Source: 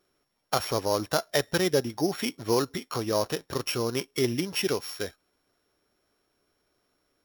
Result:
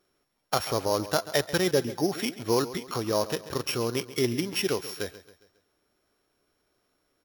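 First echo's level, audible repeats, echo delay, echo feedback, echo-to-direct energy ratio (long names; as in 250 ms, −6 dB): −15.5 dB, 3, 136 ms, 45%, −14.5 dB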